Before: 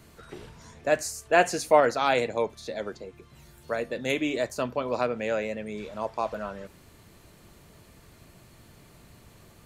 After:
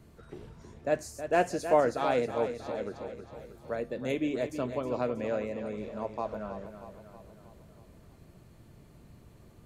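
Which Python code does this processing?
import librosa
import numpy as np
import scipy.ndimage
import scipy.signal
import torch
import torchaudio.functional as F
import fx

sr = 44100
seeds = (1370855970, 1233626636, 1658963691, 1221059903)

p1 = fx.tilt_shelf(x, sr, db=5.5, hz=820.0)
p2 = p1 + fx.echo_feedback(p1, sr, ms=318, feedback_pct=55, wet_db=-10, dry=0)
y = p2 * librosa.db_to_amplitude(-6.0)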